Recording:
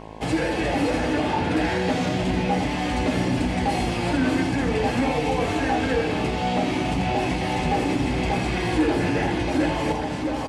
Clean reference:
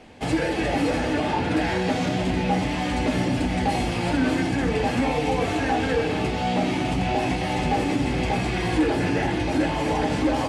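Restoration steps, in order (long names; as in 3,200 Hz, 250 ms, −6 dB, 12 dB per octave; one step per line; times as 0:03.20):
hum removal 54.1 Hz, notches 20
echo removal 83 ms −11 dB
level correction +4.5 dB, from 0:09.92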